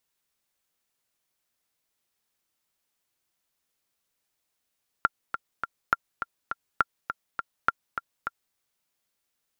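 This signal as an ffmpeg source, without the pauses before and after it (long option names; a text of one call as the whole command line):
ffmpeg -f lavfi -i "aevalsrc='pow(10,(-7-9*gte(mod(t,3*60/205),60/205))/20)*sin(2*PI*1380*mod(t,60/205))*exp(-6.91*mod(t,60/205)/0.03)':duration=3.51:sample_rate=44100" out.wav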